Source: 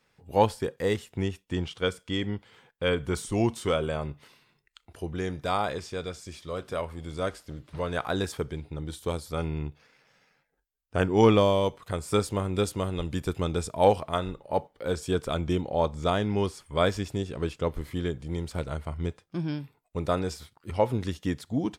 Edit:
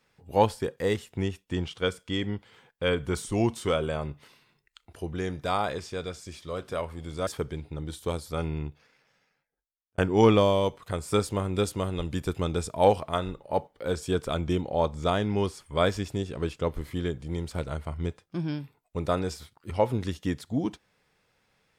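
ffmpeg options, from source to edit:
ffmpeg -i in.wav -filter_complex "[0:a]asplit=3[link_01][link_02][link_03];[link_01]atrim=end=7.272[link_04];[link_02]atrim=start=8.268:end=10.98,asetpts=PTS-STARTPTS,afade=type=out:start_time=1.262:duration=1.45[link_05];[link_03]atrim=start=10.98,asetpts=PTS-STARTPTS,afade=type=in:duration=0.004:curve=hsin[link_06];[link_05][link_06]concat=n=2:v=0:a=1[link_07];[link_04][link_07]acrossfade=duration=0.004:curve1=hsin:curve2=hsin" out.wav

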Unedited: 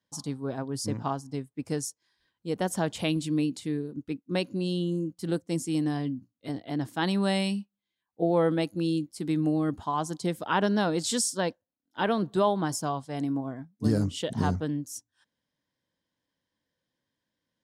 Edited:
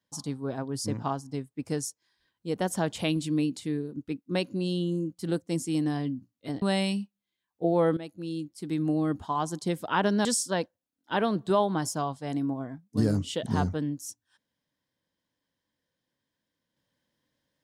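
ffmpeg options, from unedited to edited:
ffmpeg -i in.wav -filter_complex "[0:a]asplit=4[link_01][link_02][link_03][link_04];[link_01]atrim=end=6.622[link_05];[link_02]atrim=start=7.198:end=8.55,asetpts=PTS-STARTPTS,afade=type=out:start_time=1.348:duration=0.004:curve=hsin:silence=0.199526[link_06];[link_03]atrim=start=8.55:end=10.832,asetpts=PTS-STARTPTS,afade=type=in:duration=1.07:silence=0.199526[link_07];[link_04]atrim=start=11.118[link_08];[link_06][link_07]concat=n=2:v=0:a=1[link_09];[link_05][link_09]acrossfade=duration=0.004:curve1=hsin:curve2=hsin[link_10];[link_10][link_08]acrossfade=duration=0.004:curve1=hsin:curve2=hsin" out.wav

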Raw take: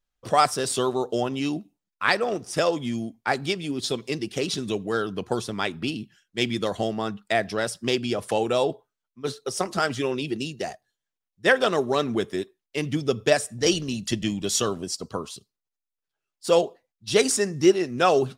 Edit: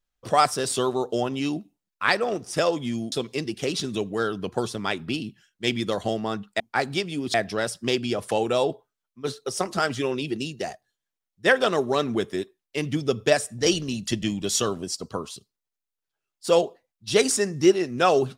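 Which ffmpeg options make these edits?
ffmpeg -i in.wav -filter_complex "[0:a]asplit=4[link_01][link_02][link_03][link_04];[link_01]atrim=end=3.122[link_05];[link_02]atrim=start=3.858:end=7.342[link_06];[link_03]atrim=start=3.118:end=3.862[link_07];[link_04]atrim=start=7.338[link_08];[link_05][link_06]acrossfade=duration=0.004:curve1=hsin:curve2=hsin[link_09];[link_09][link_07]acrossfade=duration=0.004:curve1=hsin:curve2=hsin[link_10];[link_10][link_08]acrossfade=duration=0.004:curve1=hsin:curve2=hsin" out.wav

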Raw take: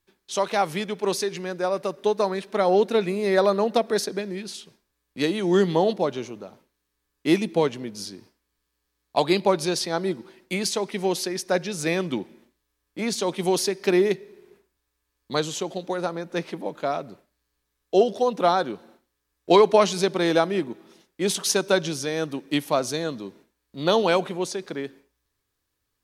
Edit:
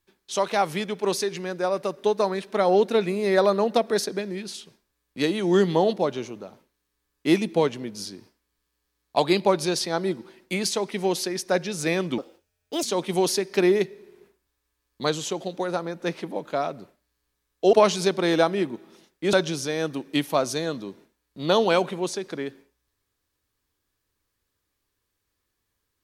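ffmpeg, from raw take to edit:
ffmpeg -i in.wav -filter_complex "[0:a]asplit=5[link_01][link_02][link_03][link_04][link_05];[link_01]atrim=end=12.184[link_06];[link_02]atrim=start=12.18:end=13.13,asetpts=PTS-STARTPTS,asetrate=64386,aresample=44100,atrim=end_sample=28695,asetpts=PTS-STARTPTS[link_07];[link_03]atrim=start=13.126:end=18.032[link_08];[link_04]atrim=start=19.698:end=21.302[link_09];[link_05]atrim=start=21.708[link_10];[link_06][link_07]acrossfade=duration=0.004:curve1=hsin:curve2=hsin[link_11];[link_11][link_08]acrossfade=duration=0.004:curve1=hsin:curve2=hsin[link_12];[link_12][link_09]acrossfade=duration=0.004:curve1=hsin:curve2=hsin[link_13];[link_13][link_10]acrossfade=duration=0.004:curve1=hsin:curve2=hsin" out.wav

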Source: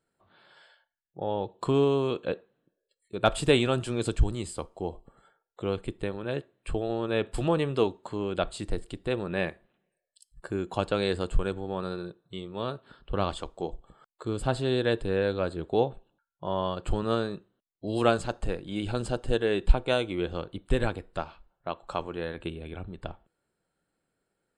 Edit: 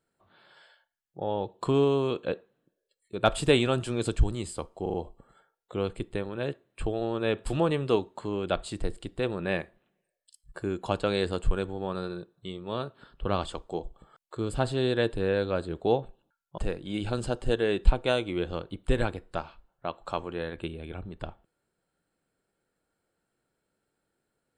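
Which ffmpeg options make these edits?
ffmpeg -i in.wav -filter_complex "[0:a]asplit=5[link_01][link_02][link_03][link_04][link_05];[link_01]atrim=end=4.862[link_06];[link_02]atrim=start=4.818:end=4.862[link_07];[link_03]atrim=start=4.818:end=4.862[link_08];[link_04]atrim=start=4.818:end=16.462[link_09];[link_05]atrim=start=18.398[link_10];[link_06][link_07]acrossfade=duration=0.004:curve1=hsin:curve2=hsin[link_11];[link_11][link_08]acrossfade=duration=0.004:curve1=hsin:curve2=hsin[link_12];[link_12][link_09]acrossfade=duration=0.004:curve1=hsin:curve2=hsin[link_13];[link_13][link_10]acrossfade=duration=0.004:curve1=hsin:curve2=hsin" out.wav

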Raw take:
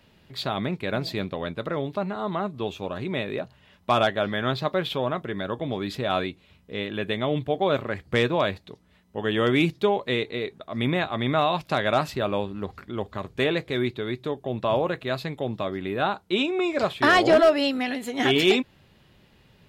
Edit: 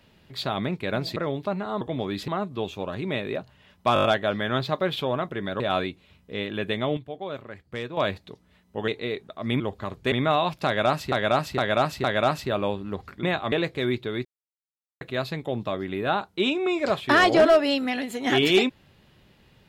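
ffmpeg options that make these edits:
ffmpeg -i in.wav -filter_complex "[0:a]asplit=22[link_01][link_02][link_03][link_04][link_05][link_06][link_07][link_08][link_09][link_10][link_11][link_12][link_13][link_14][link_15][link_16][link_17][link_18][link_19][link_20][link_21][link_22];[link_01]atrim=end=1.162[link_23];[link_02]atrim=start=1.658:end=2.312[link_24];[link_03]atrim=start=5.528:end=6.002[link_25];[link_04]atrim=start=2.308:end=3.992[link_26];[link_05]atrim=start=3.968:end=3.992[link_27];[link_06]atrim=start=3.968:end=3.992[link_28];[link_07]atrim=start=3.968:end=3.992[link_29];[link_08]atrim=start=3.968:end=3.992[link_30];[link_09]atrim=start=3.968:end=5.532[link_31];[link_10]atrim=start=5.998:end=7.37,asetpts=PTS-STARTPTS,afade=type=out:start_time=1.122:duration=0.25:curve=log:silence=0.281838[link_32];[link_11]atrim=start=7.37:end=8.37,asetpts=PTS-STARTPTS,volume=-11dB[link_33];[link_12]atrim=start=8.37:end=9.282,asetpts=PTS-STARTPTS,afade=type=in:duration=0.25:curve=log:silence=0.281838[link_34];[link_13]atrim=start=10.188:end=10.912[link_35];[link_14]atrim=start=12.928:end=13.452[link_36];[link_15]atrim=start=11.198:end=12.202[link_37];[link_16]atrim=start=11.738:end=12.202[link_38];[link_17]atrim=start=11.738:end=12.202[link_39];[link_18]atrim=start=11.738:end=12.932[link_40];[link_19]atrim=start=10.908:end=11.202[link_41];[link_20]atrim=start=13.448:end=14.18,asetpts=PTS-STARTPTS,afade=type=out:start_time=0.728:duration=0.004:curve=hsin[link_42];[link_21]atrim=start=14.18:end=14.94,asetpts=PTS-STARTPTS,volume=0[link_43];[link_22]atrim=start=14.94,asetpts=PTS-STARTPTS,afade=type=in:duration=0.004:curve=hsin[link_44];[link_23][link_24]acrossfade=duration=0.004:curve1=hsin:curve2=hsin[link_45];[link_45][link_25]acrossfade=duration=0.004:curve1=hsin:curve2=hsin[link_46];[link_46][link_26]acrossfade=duration=0.004:curve1=hsin:curve2=hsin[link_47];[link_47][link_27]acrossfade=duration=0.004:curve1=hsin:curve2=hsin[link_48];[link_48][link_28]acrossfade=duration=0.004:curve1=hsin:curve2=hsin[link_49];[link_49][link_29]acrossfade=duration=0.004:curve1=hsin:curve2=hsin[link_50];[link_50][link_30]acrossfade=duration=0.004:curve1=hsin:curve2=hsin[link_51];[link_51][link_31]acrossfade=duration=0.004:curve1=hsin:curve2=hsin[link_52];[link_32][link_33][link_34]concat=n=3:v=0:a=1[link_53];[link_52][link_53]acrossfade=duration=0.004:curve1=hsin:curve2=hsin[link_54];[link_54][link_35]acrossfade=duration=0.004:curve1=hsin:curve2=hsin[link_55];[link_55][link_36]acrossfade=duration=0.004:curve1=hsin:curve2=hsin[link_56];[link_56][link_37]acrossfade=duration=0.004:curve1=hsin:curve2=hsin[link_57];[link_57][link_38]acrossfade=duration=0.004:curve1=hsin:curve2=hsin[link_58];[link_58][link_39]acrossfade=duration=0.004:curve1=hsin:curve2=hsin[link_59];[link_59][link_40]acrossfade=duration=0.004:curve1=hsin:curve2=hsin[link_60];[link_60][link_41]acrossfade=duration=0.004:curve1=hsin:curve2=hsin[link_61];[link_42][link_43][link_44]concat=n=3:v=0:a=1[link_62];[link_61][link_62]acrossfade=duration=0.004:curve1=hsin:curve2=hsin" out.wav

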